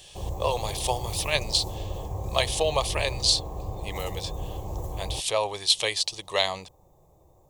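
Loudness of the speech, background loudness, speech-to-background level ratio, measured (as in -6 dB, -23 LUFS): -26.5 LUFS, -35.5 LUFS, 9.0 dB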